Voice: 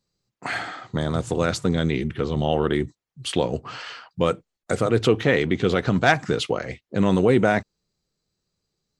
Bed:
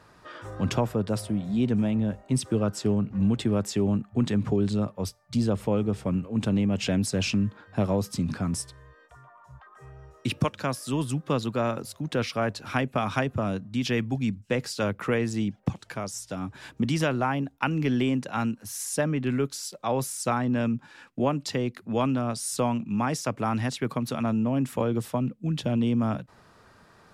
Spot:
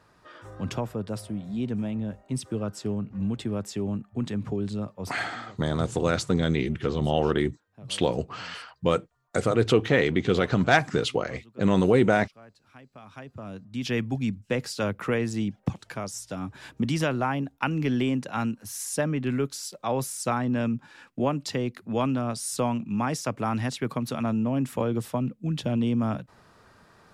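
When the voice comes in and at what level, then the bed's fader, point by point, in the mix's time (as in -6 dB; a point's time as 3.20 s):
4.65 s, -2.0 dB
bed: 5.14 s -5 dB
5.36 s -24 dB
12.85 s -24 dB
13.96 s -0.5 dB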